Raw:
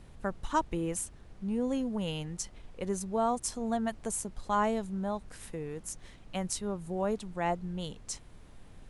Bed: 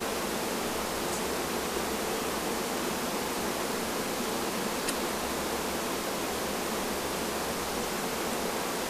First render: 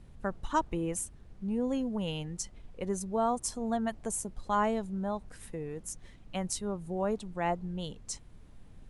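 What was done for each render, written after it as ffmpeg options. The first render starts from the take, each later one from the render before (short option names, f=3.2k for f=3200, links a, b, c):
-af "afftdn=nr=6:nf=-52"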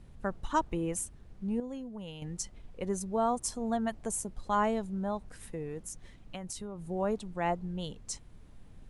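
-filter_complex "[0:a]asettb=1/sr,asplit=3[a][b][c];[a]atrim=end=5.834[d];[b]atrim=start=5.83:end=6.86,asetpts=PTS-STARTPTS,afade=t=in:d=0.004:c=qsin,afade=t=out:st=1.026:d=0.004:c=qsin,acompressor=threshold=-36dB:ratio=6:attack=3.2:release=140:knee=1:detection=peak[e];[c]atrim=start=6.856[f];[d][e]acrossfade=d=0.004:c1=hsin:c2=qsin[g];[g][f]acrossfade=d=0.004:c1=qsin:c2=hsin,asplit=3[h][i][j];[h]atrim=end=1.602[k];[i]atrim=start=1.598:end=2.222,asetpts=PTS-STARTPTS,volume=-9dB[l];[j]atrim=start=2.218[m];[k][l]acrossfade=d=0.004:c1=hsin:c2=hsin[n];[n][m]acrossfade=d=0.004:c1=hsin:c2=hsin"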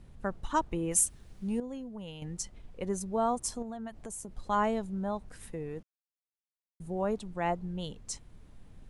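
-filter_complex "[0:a]asettb=1/sr,asplit=3[a][b][c];[a]atrim=end=0.914[d];[b]atrim=start=0.91:end=1.6,asetpts=PTS-STARTPTS,afade=t=in:d=0.004:c=qsin,afade=t=out:st=0.686:d=0.004:c=qsin,highshelf=f=2.6k:g=11.5[e];[c]atrim=start=1.596[f];[d][e]acrossfade=d=0.004:c1=hsin:c2=qsin[g];[g][f]acrossfade=d=0.004:c1=qsin:c2=hsin,asettb=1/sr,asplit=3[h][i][j];[h]atrim=end=3.624[k];[i]atrim=start=3.62:end=4.34,asetpts=PTS-STARTPTS,afade=t=in:d=0.004:c=qsin,afade=t=out:st=0.716:d=0.004:c=qsin,acompressor=threshold=-38dB:ratio=4:attack=3.2:release=140:knee=1:detection=peak[l];[j]atrim=start=4.336[m];[k][l]acrossfade=d=0.004:c1=hsin:c2=qsin[n];[n][m]acrossfade=d=0.004:c1=qsin:c2=hsin,asplit=3[o][p][q];[o]atrim=end=5.83,asetpts=PTS-STARTPTS,afade=t=out:st=5.826:d=0.004:c=hsin[r];[p]atrim=start=5.83:end=6.8,asetpts=PTS-STARTPTS,volume=0[s];[q]atrim=start=6.8,asetpts=PTS-STARTPTS,afade=t=in:d=0.004:c=hsin[t];[r][s][t]concat=n=3:v=0:a=1"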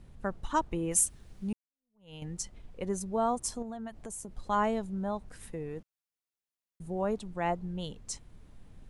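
-filter_complex "[0:a]asplit=2[a][b];[a]atrim=end=1.53,asetpts=PTS-STARTPTS,afade=t=out:st=1.526:d=0.004:c=hsin[c];[b]atrim=start=1.53,asetpts=PTS-STARTPTS,afade=t=in:d=0.61:c=exp[d];[c][d]concat=n=2:v=0:a=1"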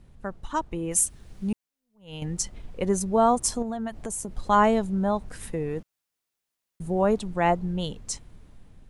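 -af "dynaudnorm=f=350:g=7:m=9dB"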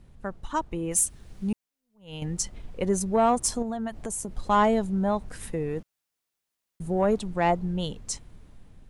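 -af "asoftclip=type=tanh:threshold=-11.5dB"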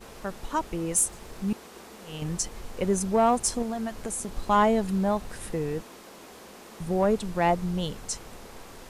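-filter_complex "[1:a]volume=-15dB[a];[0:a][a]amix=inputs=2:normalize=0"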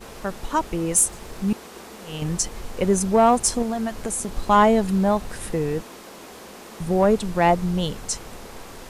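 -af "volume=5.5dB"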